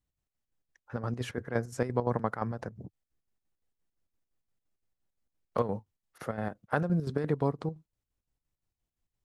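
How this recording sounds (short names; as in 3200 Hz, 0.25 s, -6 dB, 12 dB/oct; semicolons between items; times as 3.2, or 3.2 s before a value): chopped level 5.8 Hz, depth 60%, duty 60%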